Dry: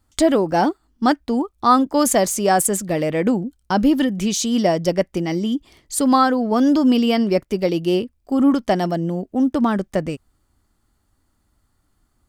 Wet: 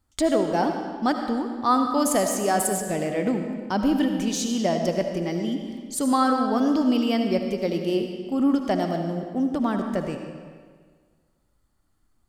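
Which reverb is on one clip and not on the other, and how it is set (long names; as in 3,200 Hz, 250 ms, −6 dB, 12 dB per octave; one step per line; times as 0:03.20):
comb and all-pass reverb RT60 1.7 s, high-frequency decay 0.85×, pre-delay 35 ms, DRR 4.5 dB
level −6.5 dB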